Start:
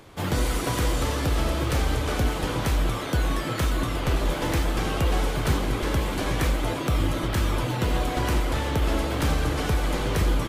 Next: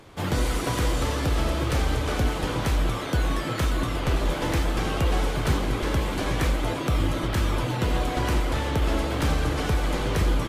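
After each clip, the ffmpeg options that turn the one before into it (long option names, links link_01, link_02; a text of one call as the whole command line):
ffmpeg -i in.wav -af "highshelf=frequency=12000:gain=-6.5" out.wav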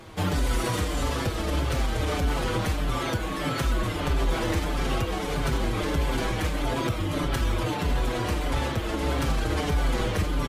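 ffmpeg -i in.wav -filter_complex "[0:a]alimiter=limit=-22dB:level=0:latency=1:release=54,asplit=2[link_01][link_02];[link_02]adelay=5.7,afreqshift=-1.6[link_03];[link_01][link_03]amix=inputs=2:normalize=1,volume=7dB" out.wav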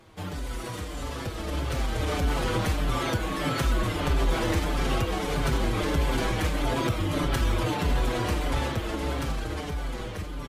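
ffmpeg -i in.wav -af "dynaudnorm=framelen=200:gausssize=17:maxgain=10dB,volume=-9dB" out.wav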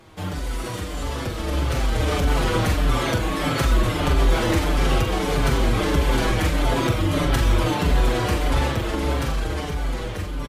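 ffmpeg -i in.wav -filter_complex "[0:a]asplit=2[link_01][link_02];[link_02]adelay=43,volume=-7dB[link_03];[link_01][link_03]amix=inputs=2:normalize=0,volume=4.5dB" out.wav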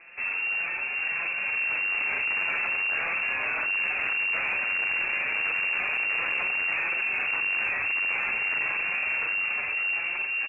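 ffmpeg -i in.wav -af "asoftclip=type=hard:threshold=-26dB,lowpass=frequency=2400:width_type=q:width=0.5098,lowpass=frequency=2400:width_type=q:width=0.6013,lowpass=frequency=2400:width_type=q:width=0.9,lowpass=frequency=2400:width_type=q:width=2.563,afreqshift=-2800,acontrast=75,volume=-7dB" out.wav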